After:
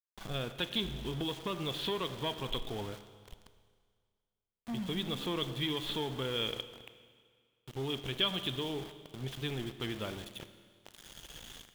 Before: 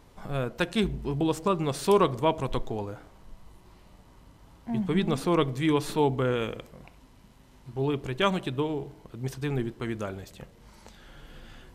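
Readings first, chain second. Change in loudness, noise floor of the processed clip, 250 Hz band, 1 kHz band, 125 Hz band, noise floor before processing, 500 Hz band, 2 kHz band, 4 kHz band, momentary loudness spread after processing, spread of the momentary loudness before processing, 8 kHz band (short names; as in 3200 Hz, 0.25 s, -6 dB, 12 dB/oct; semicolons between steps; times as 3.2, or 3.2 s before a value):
-8.0 dB, under -85 dBFS, -10.5 dB, -12.0 dB, -9.0 dB, -56 dBFS, -11.5 dB, -6.0 dB, +3.5 dB, 15 LU, 13 LU, -7.0 dB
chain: compressor 4:1, threshold -28 dBFS, peak gain reduction 10 dB; soft clip -25.5 dBFS, distortion -17 dB; ladder low-pass 3500 Hz, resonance 80%; sample gate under -52 dBFS; Schroeder reverb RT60 1.9 s, combs from 26 ms, DRR 11 dB; gain +8.5 dB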